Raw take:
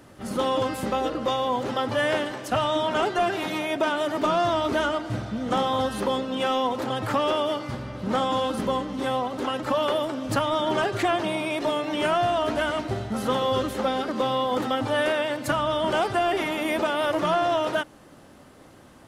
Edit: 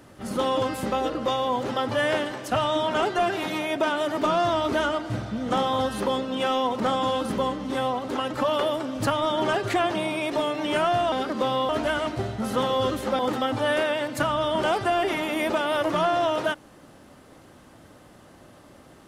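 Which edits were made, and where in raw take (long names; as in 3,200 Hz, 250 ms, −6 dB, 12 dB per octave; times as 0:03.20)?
0:06.80–0:08.09: remove
0:13.91–0:14.48: move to 0:12.41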